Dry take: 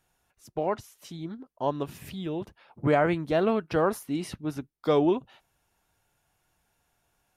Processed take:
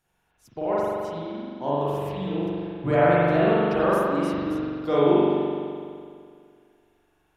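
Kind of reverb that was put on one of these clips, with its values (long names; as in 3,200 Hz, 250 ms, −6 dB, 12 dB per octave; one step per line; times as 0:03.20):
spring reverb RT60 2.2 s, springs 42 ms, chirp 75 ms, DRR −9 dB
level −4.5 dB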